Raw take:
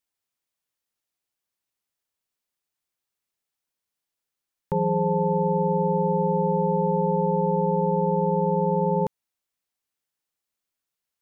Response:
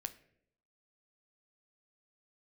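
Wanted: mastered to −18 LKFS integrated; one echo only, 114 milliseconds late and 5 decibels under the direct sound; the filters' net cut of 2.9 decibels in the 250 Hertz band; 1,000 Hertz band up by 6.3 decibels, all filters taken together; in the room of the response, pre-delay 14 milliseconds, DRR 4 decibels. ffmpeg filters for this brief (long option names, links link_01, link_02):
-filter_complex "[0:a]equalizer=frequency=250:width_type=o:gain=-6,equalizer=frequency=1000:width_type=o:gain=7.5,aecho=1:1:114:0.562,asplit=2[link_01][link_02];[1:a]atrim=start_sample=2205,adelay=14[link_03];[link_02][link_03]afir=irnorm=-1:irlink=0,volume=-1.5dB[link_04];[link_01][link_04]amix=inputs=2:normalize=0,volume=4.5dB"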